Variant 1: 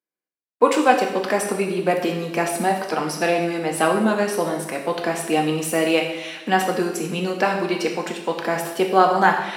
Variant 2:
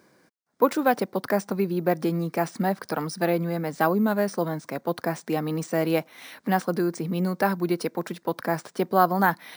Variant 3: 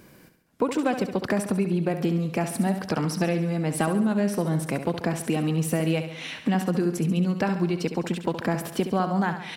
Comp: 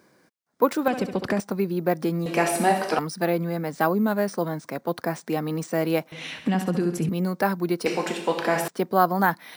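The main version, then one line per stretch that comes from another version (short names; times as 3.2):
2
0.88–1.4 from 3
2.26–2.99 from 1
6.12–7.09 from 3
7.86–8.68 from 1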